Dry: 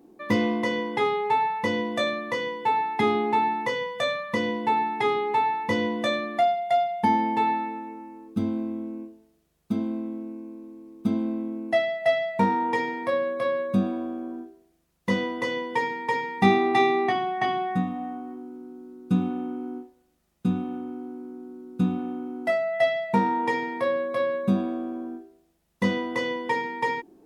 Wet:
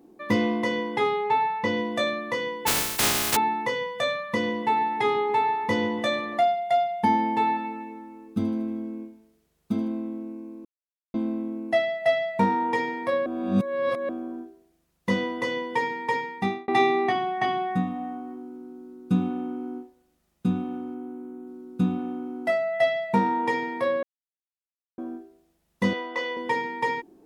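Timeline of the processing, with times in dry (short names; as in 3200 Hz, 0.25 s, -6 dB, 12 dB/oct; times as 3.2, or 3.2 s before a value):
1.24–1.77 LPF 6100 Hz
2.66–3.35 spectral contrast lowered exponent 0.14
4.29–6.39 darkening echo 0.142 s, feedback 67%, low-pass 2700 Hz, level -15.5 dB
7.49–9.88 thinning echo 78 ms, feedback 62%, level -11 dB
10.65–11.14 mute
13.26–14.09 reverse
16.15–16.68 fade out
20.94–21.47 bell 4900 Hz -10 dB 0.51 oct
24.03–24.98 mute
25.93–26.37 BPF 490–5200 Hz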